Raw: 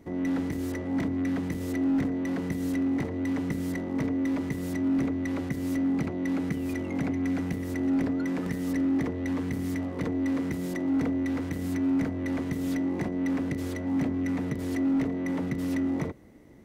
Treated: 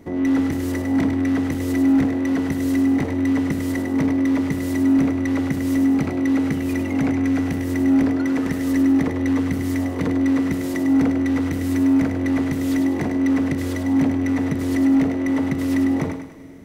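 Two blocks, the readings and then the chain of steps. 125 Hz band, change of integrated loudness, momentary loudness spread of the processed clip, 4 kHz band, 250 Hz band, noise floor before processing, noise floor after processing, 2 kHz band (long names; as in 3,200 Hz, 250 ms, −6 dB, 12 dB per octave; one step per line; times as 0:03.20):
+7.0 dB, +9.0 dB, 5 LU, can't be measured, +9.0 dB, −34 dBFS, −26 dBFS, +8.5 dB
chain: mains-hum notches 60/120/180 Hz
feedback echo with a high-pass in the loop 101 ms, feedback 45%, level −6 dB
four-comb reverb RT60 3.7 s, combs from 26 ms, DRR 17.5 dB
level +7.5 dB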